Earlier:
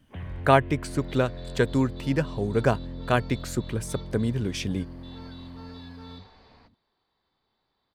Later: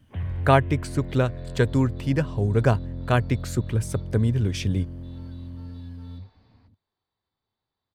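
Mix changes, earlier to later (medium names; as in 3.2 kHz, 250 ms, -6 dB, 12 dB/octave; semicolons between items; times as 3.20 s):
second sound -10.0 dB; master: add peaking EQ 97 Hz +10 dB 0.86 oct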